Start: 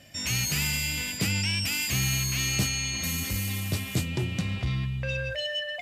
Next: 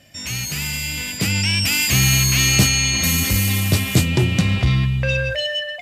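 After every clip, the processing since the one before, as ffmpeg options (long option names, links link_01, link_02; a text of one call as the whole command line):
ffmpeg -i in.wav -af "dynaudnorm=framelen=570:gausssize=5:maxgain=12dB,volume=1.5dB" out.wav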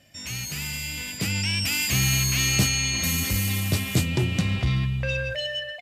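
ffmpeg -i in.wav -filter_complex "[0:a]asplit=2[link_01][link_02];[link_02]adelay=379,volume=-22dB,highshelf=frequency=4000:gain=-8.53[link_03];[link_01][link_03]amix=inputs=2:normalize=0,volume=-6.5dB" out.wav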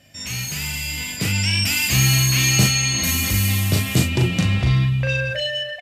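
ffmpeg -i in.wav -filter_complex "[0:a]asplit=2[link_01][link_02];[link_02]adelay=39,volume=-4dB[link_03];[link_01][link_03]amix=inputs=2:normalize=0,volume=3.5dB" out.wav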